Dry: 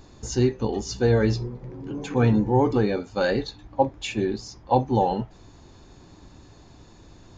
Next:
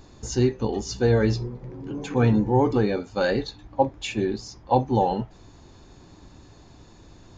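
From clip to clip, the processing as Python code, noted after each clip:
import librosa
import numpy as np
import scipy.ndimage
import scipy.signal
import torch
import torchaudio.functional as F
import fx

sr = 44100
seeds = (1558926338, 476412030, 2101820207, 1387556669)

y = x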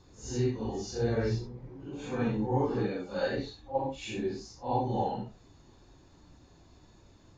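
y = fx.phase_scramble(x, sr, seeds[0], window_ms=200)
y = y * librosa.db_to_amplitude(-8.5)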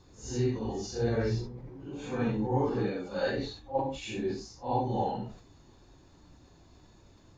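y = fx.sustainer(x, sr, db_per_s=100.0)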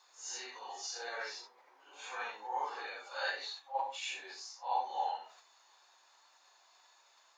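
y = scipy.signal.sosfilt(scipy.signal.butter(4, 810.0, 'highpass', fs=sr, output='sos'), x)
y = y * librosa.db_to_amplitude(1.5)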